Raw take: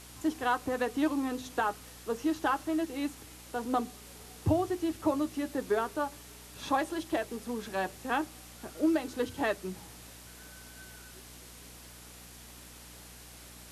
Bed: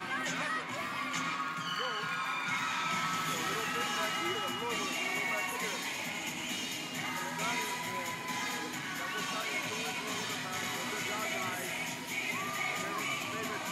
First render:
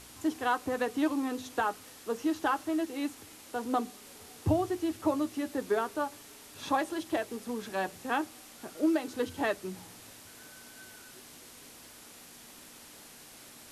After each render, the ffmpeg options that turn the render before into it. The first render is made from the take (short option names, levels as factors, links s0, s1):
-af "bandreject=f=60:t=h:w=4,bandreject=f=120:t=h:w=4,bandreject=f=180:t=h:w=4"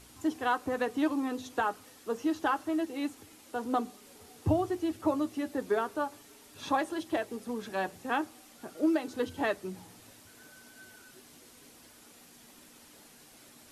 -af "afftdn=nr=6:nf=-52"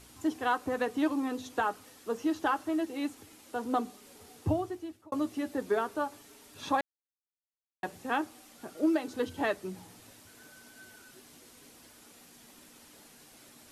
-filter_complex "[0:a]asplit=4[s0][s1][s2][s3];[s0]atrim=end=5.12,asetpts=PTS-STARTPTS,afade=t=out:st=4.35:d=0.77[s4];[s1]atrim=start=5.12:end=6.81,asetpts=PTS-STARTPTS,afade=t=in:d=0.004:c=hsin,afade=t=out:st=1.686:d=0.004:c=hsin[s5];[s2]atrim=start=6.81:end=7.83,asetpts=PTS-STARTPTS,volume=0[s6];[s3]atrim=start=7.83,asetpts=PTS-STARTPTS,afade=t=in:d=0.004:c=hsin[s7];[s4][s5][s6][s7]concat=n=4:v=0:a=1"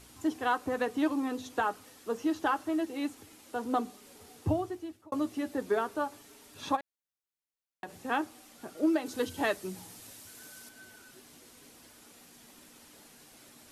-filter_complex "[0:a]asplit=3[s0][s1][s2];[s0]afade=t=out:st=6.75:d=0.02[s3];[s1]acompressor=threshold=0.0158:ratio=6:attack=3.2:release=140:knee=1:detection=peak,afade=t=in:st=6.75:d=0.02,afade=t=out:st=7.91:d=0.02[s4];[s2]afade=t=in:st=7.91:d=0.02[s5];[s3][s4][s5]amix=inputs=3:normalize=0,asettb=1/sr,asplit=3[s6][s7][s8];[s6]atrim=end=9.064[s9];[s7]atrim=start=9.06:end=10.69,asetpts=PTS-STARTPTS,afade=t=in:d=0.004:c=qsin,afade=t=out:st=1.626:d=0.004:c=qsin,highshelf=f=3900:g=8.5[s10];[s8]atrim=start=10.686[s11];[s9][s10]acrossfade=d=0.004:c1=hsin:c2=qsin[s12];[s12][s11]acrossfade=d=0.004:c1=qsin:c2=hsin"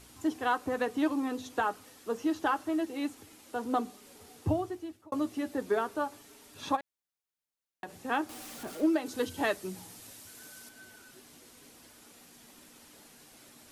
-filter_complex "[0:a]asettb=1/sr,asplit=3[s0][s1][s2];[s0]atrim=end=8.294[s3];[s1]atrim=start=8.29:end=8.87,asetpts=PTS-STARTPTS,afade=t=in:d=0.004:c=qsin,afade=t=out:st=0.576:d=0.004:c=qsin,aeval=exprs='val(0)+0.5*0.00794*sgn(val(0))':c=same[s4];[s2]atrim=start=8.866[s5];[s3][s4]acrossfade=d=0.004:c1=hsin:c2=qsin[s6];[s6][s5]acrossfade=d=0.004:c1=qsin:c2=hsin"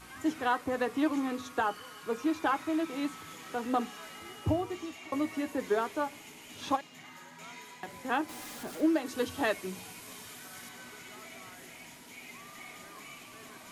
-filter_complex "[1:a]volume=0.211[s0];[0:a][s0]amix=inputs=2:normalize=0"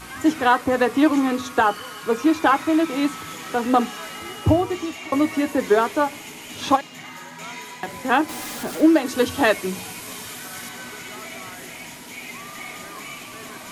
-af "volume=3.98"